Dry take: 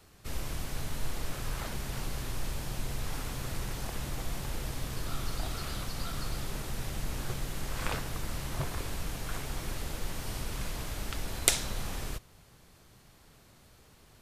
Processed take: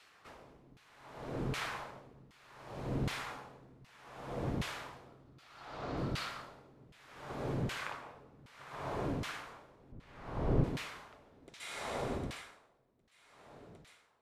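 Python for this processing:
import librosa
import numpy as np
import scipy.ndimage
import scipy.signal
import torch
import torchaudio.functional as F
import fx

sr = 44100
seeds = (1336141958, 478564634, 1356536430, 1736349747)

y = fx.lowpass(x, sr, hz=6700.0, slope=24, at=(5.43, 5.97))
y = fx.echo_feedback(y, sr, ms=757, feedback_pct=57, wet_db=-18.5)
y = fx.rev_plate(y, sr, seeds[0], rt60_s=2.2, hf_ratio=0.75, predelay_ms=115, drr_db=-2.5)
y = fx.filter_lfo_bandpass(y, sr, shape='saw_down', hz=1.3, low_hz=210.0, high_hz=2600.0, q=0.99)
y = fx.tilt_eq(y, sr, slope=-3.5, at=(9.92, 10.64))
y = y * 10.0 ** (-25 * (0.5 - 0.5 * np.cos(2.0 * np.pi * 0.66 * np.arange(len(y)) / sr)) / 20.0)
y = y * 10.0 ** (5.0 / 20.0)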